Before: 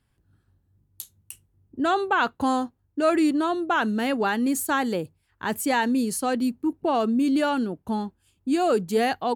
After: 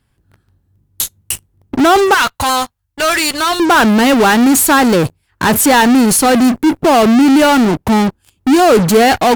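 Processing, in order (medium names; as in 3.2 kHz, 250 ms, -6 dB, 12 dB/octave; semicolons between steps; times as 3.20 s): 2.14–3.60 s: amplifier tone stack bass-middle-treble 10-0-10; in parallel at -9 dB: fuzz box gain 47 dB, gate -55 dBFS; on the sum: trim +8.5 dB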